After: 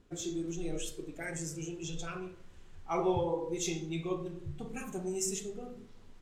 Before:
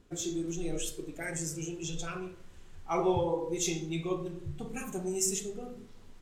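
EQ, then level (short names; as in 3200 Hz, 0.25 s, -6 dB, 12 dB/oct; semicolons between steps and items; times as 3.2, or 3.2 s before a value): high shelf 8100 Hz -6.5 dB; -2.0 dB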